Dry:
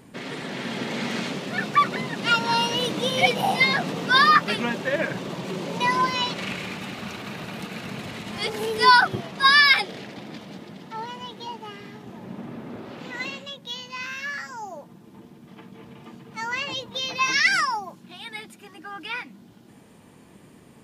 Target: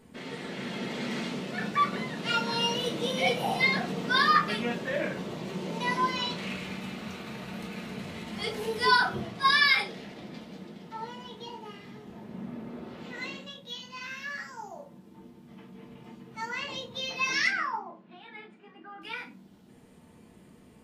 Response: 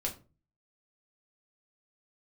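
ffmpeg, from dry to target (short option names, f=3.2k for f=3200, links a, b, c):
-filter_complex "[0:a]asettb=1/sr,asplit=3[a][b][c];[a]atrim=end=17.474[d];[b]atrim=start=17.47:end=19.02,asetpts=PTS-STARTPTS,afade=t=in:d=0.004:c=qsin,afade=t=out:st=1.546:d=0.004:c=qsin,highpass=200,lowpass=2.1k[e];[c]atrim=start=19.016[f];[d][e]acrossfade=d=0.004:c1=hsin:c2=qsin[g];[g][f]acrossfade=d=0.004:c1=qsin:c2=hsin[h];[1:a]atrim=start_sample=2205,asetrate=41013,aresample=44100[i];[h][i]afir=irnorm=-1:irlink=0,volume=-9dB"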